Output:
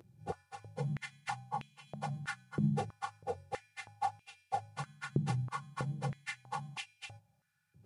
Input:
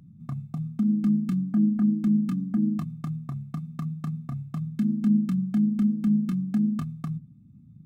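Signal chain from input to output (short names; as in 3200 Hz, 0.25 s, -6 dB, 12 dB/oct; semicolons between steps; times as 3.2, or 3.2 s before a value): pitch shift by moving bins -7 st; stepped high-pass 3.1 Hz 370–2600 Hz; gain +9 dB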